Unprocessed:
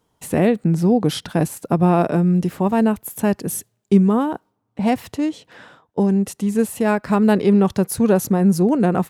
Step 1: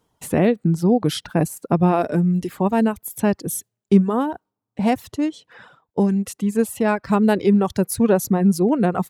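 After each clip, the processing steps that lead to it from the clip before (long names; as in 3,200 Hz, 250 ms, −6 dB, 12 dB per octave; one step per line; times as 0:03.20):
reverb reduction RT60 1 s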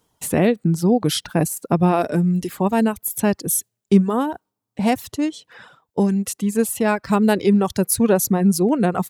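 high-shelf EQ 3,300 Hz +7.5 dB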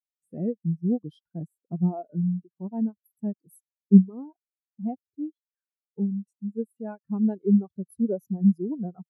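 every bin expanded away from the loudest bin 2.5 to 1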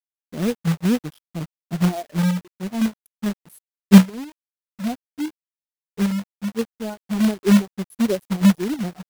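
log-companded quantiser 4 bits
level +5 dB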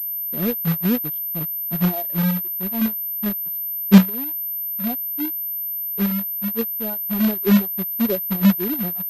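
switching amplifier with a slow clock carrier 13,000 Hz
level −1 dB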